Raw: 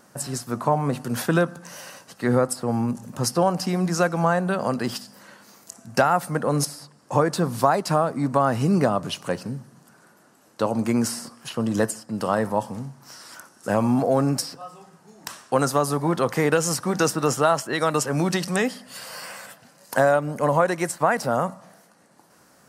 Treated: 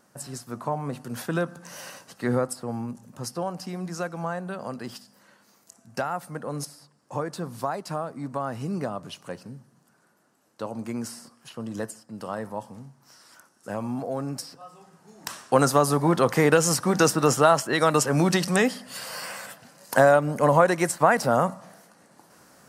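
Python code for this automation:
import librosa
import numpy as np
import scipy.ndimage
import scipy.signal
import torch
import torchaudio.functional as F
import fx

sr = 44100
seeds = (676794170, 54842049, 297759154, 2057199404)

y = fx.gain(x, sr, db=fx.line((1.29, -7.5), (1.86, 0.0), (3.0, -10.0), (14.27, -10.0), (15.39, 1.5)))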